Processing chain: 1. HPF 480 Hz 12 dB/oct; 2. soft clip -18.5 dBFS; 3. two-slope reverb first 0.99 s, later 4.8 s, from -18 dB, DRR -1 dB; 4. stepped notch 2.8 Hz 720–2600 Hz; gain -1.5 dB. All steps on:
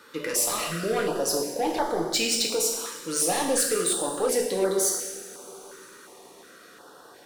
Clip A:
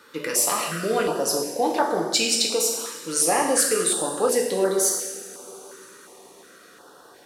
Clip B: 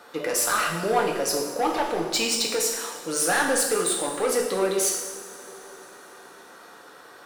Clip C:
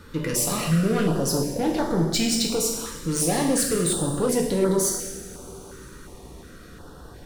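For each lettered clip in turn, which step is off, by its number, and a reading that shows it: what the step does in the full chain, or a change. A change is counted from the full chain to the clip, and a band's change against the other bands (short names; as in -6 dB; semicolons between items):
2, distortion -10 dB; 4, 2 kHz band +6.0 dB; 1, 125 Hz band +15.5 dB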